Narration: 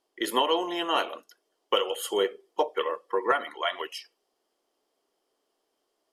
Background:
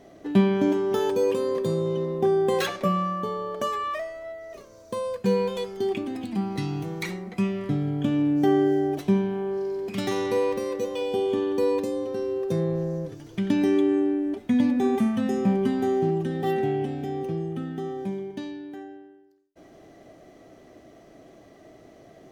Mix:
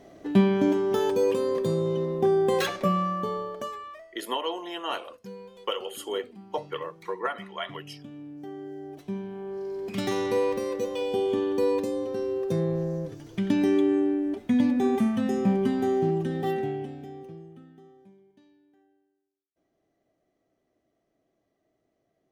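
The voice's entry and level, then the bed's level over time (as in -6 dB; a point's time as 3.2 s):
3.95 s, -5.5 dB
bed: 3.37 s -0.5 dB
4.18 s -19.5 dB
8.54 s -19.5 dB
9.98 s -1 dB
16.38 s -1 dB
18.17 s -25 dB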